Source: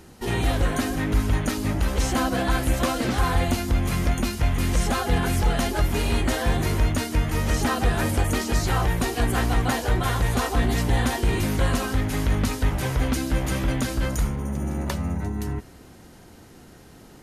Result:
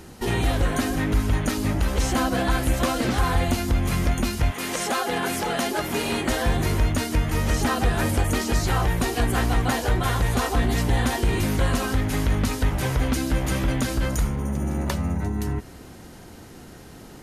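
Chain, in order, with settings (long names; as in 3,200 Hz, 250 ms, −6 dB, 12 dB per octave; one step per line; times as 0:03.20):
0:04.50–0:06.28: high-pass filter 390 Hz → 170 Hz 12 dB per octave
in parallel at +1.5 dB: downward compressor, threshold −29 dBFS, peak gain reduction 13 dB
on the sum: level −2.5 dB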